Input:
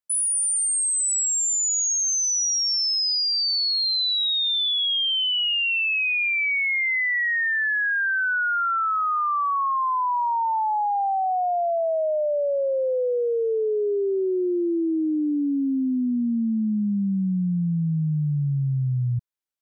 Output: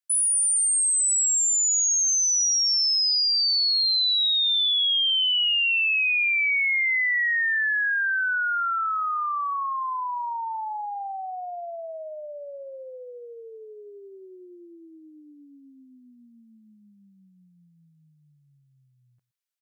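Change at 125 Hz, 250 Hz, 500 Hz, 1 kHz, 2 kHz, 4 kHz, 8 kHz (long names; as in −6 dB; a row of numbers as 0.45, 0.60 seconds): below −35 dB, below −25 dB, −16.0 dB, −5.5 dB, 0.0 dB, +1.0 dB, +1.0 dB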